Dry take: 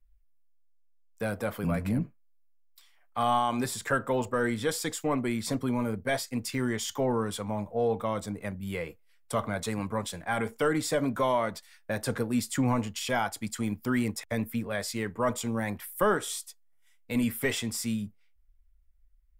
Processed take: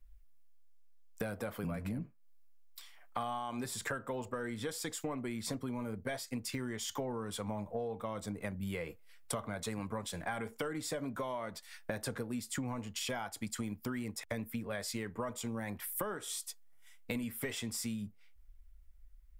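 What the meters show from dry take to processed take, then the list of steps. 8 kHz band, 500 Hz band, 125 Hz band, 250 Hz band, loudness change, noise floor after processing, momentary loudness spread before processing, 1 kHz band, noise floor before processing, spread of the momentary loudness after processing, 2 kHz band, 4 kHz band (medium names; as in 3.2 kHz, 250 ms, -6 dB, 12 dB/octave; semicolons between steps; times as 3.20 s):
-5.5 dB, -10.5 dB, -9.0 dB, -9.5 dB, -9.0 dB, -58 dBFS, 8 LU, -11.0 dB, -61 dBFS, 5 LU, -9.0 dB, -6.0 dB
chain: compression 16:1, threshold -41 dBFS, peak gain reduction 21.5 dB; trim +6 dB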